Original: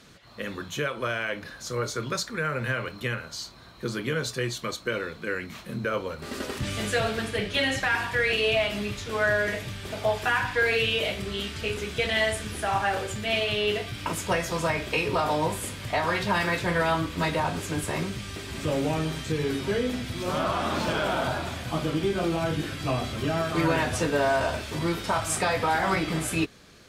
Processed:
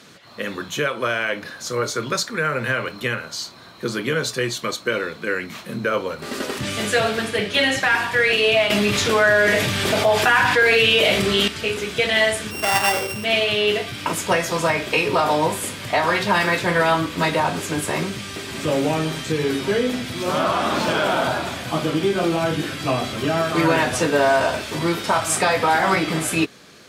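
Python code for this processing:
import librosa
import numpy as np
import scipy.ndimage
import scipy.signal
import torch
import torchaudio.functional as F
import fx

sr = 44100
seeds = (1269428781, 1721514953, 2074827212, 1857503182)

y = fx.env_flatten(x, sr, amount_pct=70, at=(8.7, 11.48))
y = fx.sample_sort(y, sr, block=16, at=(12.5, 13.23), fade=0.02)
y = scipy.signal.sosfilt(scipy.signal.bessel(2, 170.0, 'highpass', norm='mag', fs=sr, output='sos'), y)
y = y * 10.0 ** (7.0 / 20.0)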